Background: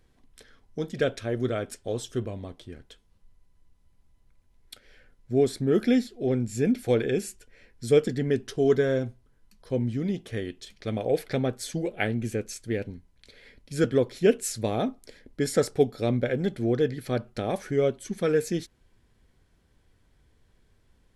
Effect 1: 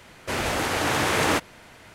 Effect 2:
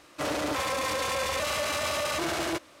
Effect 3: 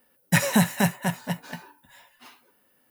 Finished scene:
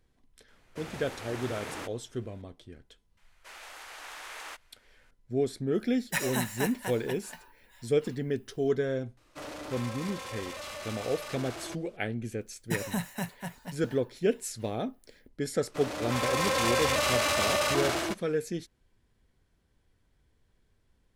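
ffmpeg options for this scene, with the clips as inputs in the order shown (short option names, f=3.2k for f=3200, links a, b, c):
-filter_complex "[1:a]asplit=2[a][b];[3:a]asplit=2[c][d];[2:a]asplit=2[e][f];[0:a]volume=-6dB[g];[b]highpass=890[h];[c]highpass=f=590:p=1[i];[f]dynaudnorm=f=260:g=5:m=12dB[j];[a]atrim=end=1.94,asetpts=PTS-STARTPTS,volume=-17.5dB,afade=t=in:d=0.004:c=hsin,afade=t=out:st=1.936:d=0.004:c=hsin,adelay=480[k];[h]atrim=end=1.94,asetpts=PTS-STARTPTS,volume=-18dB,afade=t=in:d=0.004:c=hsin,afade=t=out:st=1.936:d=0.004:c=hsin,adelay=139797S[l];[i]atrim=end=2.9,asetpts=PTS-STARTPTS,volume=-7dB,afade=t=in:d=0.004:c=hsin,afade=t=out:st=2.896:d=0.004:c=hsin,adelay=5800[m];[e]atrim=end=2.8,asetpts=PTS-STARTPTS,volume=-11.5dB,afade=t=in:d=0.004:c=hsin,afade=t=out:st=2.796:d=0.004:c=hsin,adelay=9170[n];[d]atrim=end=2.9,asetpts=PTS-STARTPTS,volume=-12.5dB,afade=t=in:d=0.004:c=hsin,afade=t=out:st=2.896:d=0.004:c=hsin,adelay=12380[o];[j]atrim=end=2.8,asetpts=PTS-STARTPTS,volume=-9.5dB,afade=t=in:d=0.004:c=hsin,afade=t=out:st=2.796:d=0.004:c=hsin,adelay=686196S[p];[g][k][l][m][n][o][p]amix=inputs=7:normalize=0"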